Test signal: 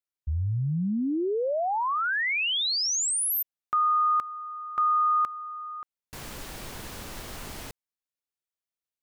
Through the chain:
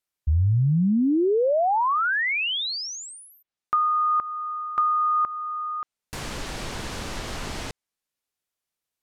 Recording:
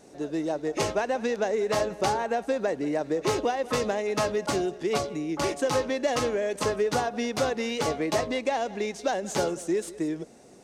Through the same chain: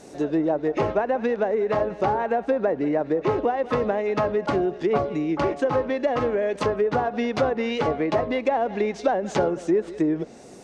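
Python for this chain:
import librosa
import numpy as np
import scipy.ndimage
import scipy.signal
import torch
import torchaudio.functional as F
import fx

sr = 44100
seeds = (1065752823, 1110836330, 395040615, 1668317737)

y = fx.rider(x, sr, range_db=3, speed_s=0.5)
y = fx.env_lowpass_down(y, sr, base_hz=1400.0, full_db=-22.5)
y = y * 10.0 ** (4.5 / 20.0)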